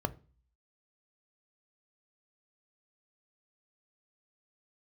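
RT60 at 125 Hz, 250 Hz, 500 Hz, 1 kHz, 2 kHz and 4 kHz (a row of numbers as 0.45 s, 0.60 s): 0.55 s, 0.45 s, 0.40 s, 0.35 s, 0.35 s, 0.40 s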